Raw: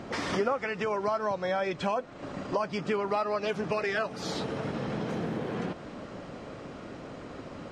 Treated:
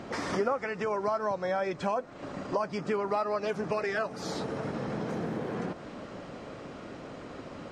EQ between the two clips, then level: dynamic EQ 3100 Hz, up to -7 dB, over -52 dBFS, Q 1.4; low shelf 170 Hz -3 dB; 0.0 dB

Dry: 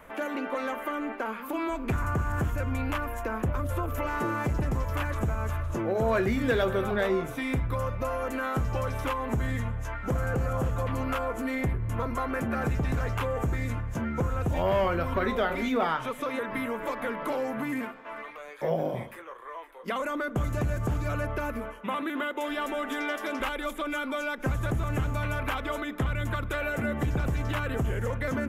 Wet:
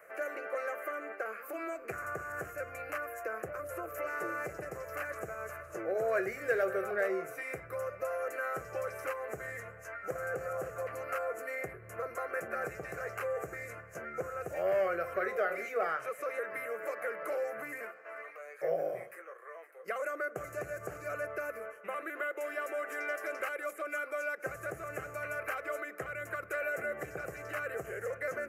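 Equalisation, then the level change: HPF 300 Hz 12 dB/oct; fixed phaser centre 940 Hz, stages 6; -2.5 dB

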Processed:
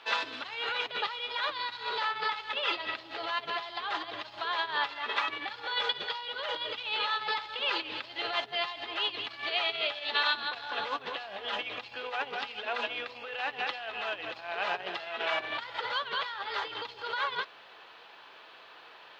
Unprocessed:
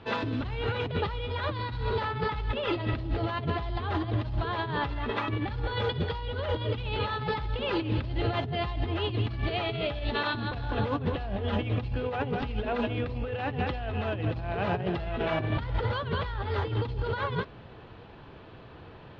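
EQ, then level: HPF 870 Hz 12 dB/oct; high shelf 3600 Hz +10.5 dB; +1.5 dB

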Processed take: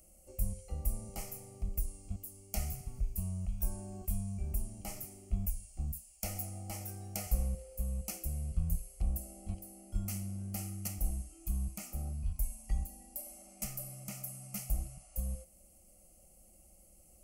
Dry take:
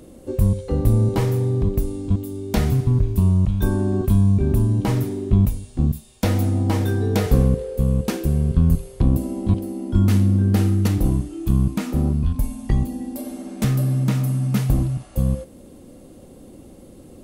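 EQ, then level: passive tone stack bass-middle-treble 5-5-5; fixed phaser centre 440 Hz, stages 6; fixed phaser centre 1000 Hz, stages 6; +4.0 dB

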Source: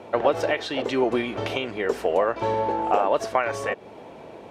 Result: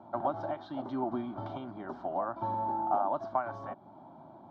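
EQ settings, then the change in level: speaker cabinet 150–2800 Hz, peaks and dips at 200 Hz -4 dB, 480 Hz -8 dB, 1100 Hz -4 dB, 1900 Hz -10 dB; bell 1900 Hz -13 dB 1.2 oct; fixed phaser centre 1100 Hz, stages 4; 0.0 dB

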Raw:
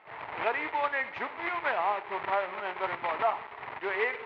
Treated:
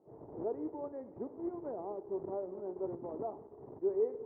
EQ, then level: ladder low-pass 450 Hz, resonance 40%; air absorption 340 m; notches 50/100 Hz; +9.0 dB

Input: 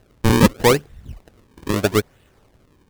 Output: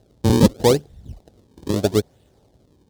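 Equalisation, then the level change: HPF 46 Hz; band shelf 1700 Hz -10.5 dB; high shelf 10000 Hz -7.5 dB; 0.0 dB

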